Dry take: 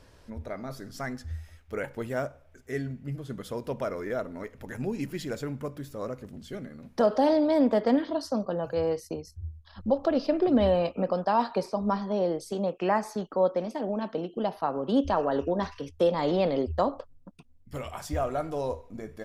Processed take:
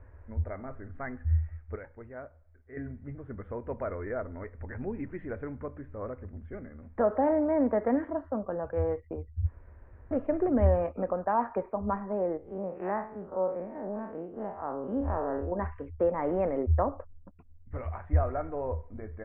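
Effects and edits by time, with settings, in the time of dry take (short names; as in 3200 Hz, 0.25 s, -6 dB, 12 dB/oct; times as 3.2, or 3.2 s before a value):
1.76–2.77 gain -9.5 dB
9.46–10.11 room tone
12.37–15.52 time blur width 99 ms
whole clip: steep low-pass 2100 Hz 48 dB/oct; resonant low shelf 110 Hz +7.5 dB, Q 3; gain -2.5 dB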